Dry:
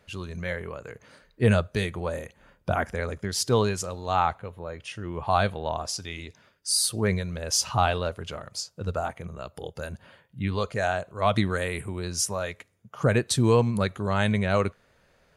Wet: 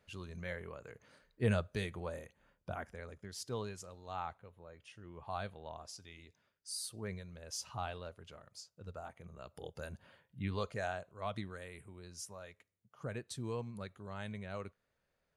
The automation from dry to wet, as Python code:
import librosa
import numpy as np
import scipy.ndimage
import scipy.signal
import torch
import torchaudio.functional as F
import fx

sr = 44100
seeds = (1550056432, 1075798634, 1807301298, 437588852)

y = fx.gain(x, sr, db=fx.line((1.98, -11.0), (2.98, -18.0), (9.02, -18.0), (9.65, -10.0), (10.64, -10.0), (11.53, -20.0)))